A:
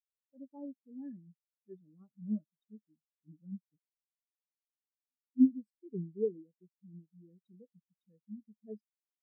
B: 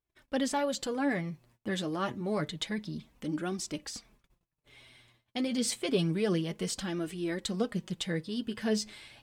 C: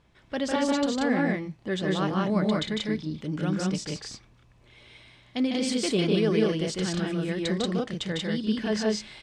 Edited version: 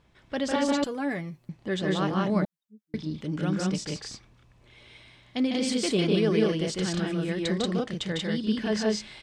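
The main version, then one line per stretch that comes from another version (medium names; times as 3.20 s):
C
0.84–1.49 s: from B
2.45–2.94 s: from A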